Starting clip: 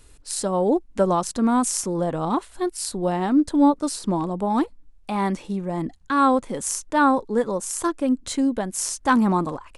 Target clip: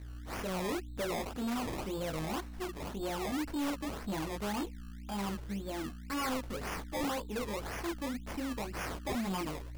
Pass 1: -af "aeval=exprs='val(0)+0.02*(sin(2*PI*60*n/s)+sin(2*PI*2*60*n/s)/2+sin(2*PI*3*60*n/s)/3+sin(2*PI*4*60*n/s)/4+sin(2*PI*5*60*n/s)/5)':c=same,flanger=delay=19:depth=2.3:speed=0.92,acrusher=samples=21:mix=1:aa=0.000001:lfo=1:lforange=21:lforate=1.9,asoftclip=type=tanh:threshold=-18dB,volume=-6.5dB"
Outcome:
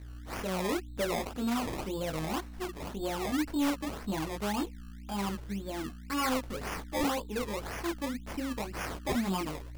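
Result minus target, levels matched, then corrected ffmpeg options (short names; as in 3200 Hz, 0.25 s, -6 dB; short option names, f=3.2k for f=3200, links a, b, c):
soft clip: distortion -5 dB
-af "aeval=exprs='val(0)+0.02*(sin(2*PI*60*n/s)+sin(2*PI*2*60*n/s)/2+sin(2*PI*3*60*n/s)/3+sin(2*PI*4*60*n/s)/4+sin(2*PI*5*60*n/s)/5)':c=same,flanger=delay=19:depth=2.3:speed=0.92,acrusher=samples=21:mix=1:aa=0.000001:lfo=1:lforange=21:lforate=1.9,asoftclip=type=tanh:threshold=-25dB,volume=-6.5dB"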